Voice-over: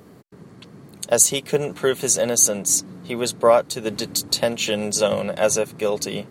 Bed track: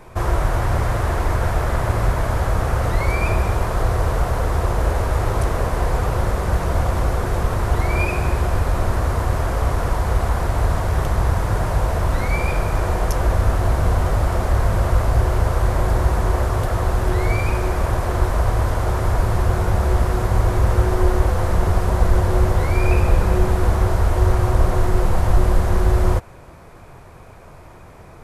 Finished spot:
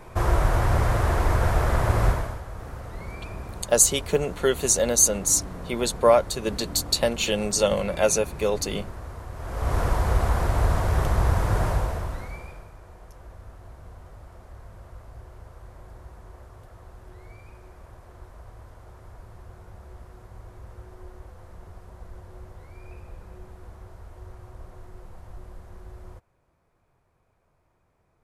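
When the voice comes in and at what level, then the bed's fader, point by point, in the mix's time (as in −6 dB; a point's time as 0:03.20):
2.60 s, −2.0 dB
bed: 0:02.09 −2 dB
0:02.43 −18 dB
0:09.33 −18 dB
0:09.76 −3 dB
0:11.68 −3 dB
0:12.77 −27 dB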